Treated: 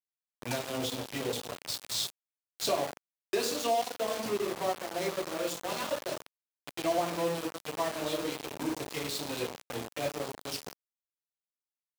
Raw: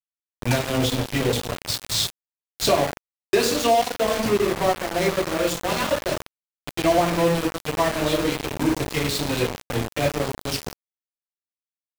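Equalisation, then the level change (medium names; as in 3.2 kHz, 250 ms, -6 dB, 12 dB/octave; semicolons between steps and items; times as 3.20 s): high-pass 340 Hz 6 dB/octave; dynamic bell 1.9 kHz, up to -4 dB, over -36 dBFS, Q 1.1; -8.5 dB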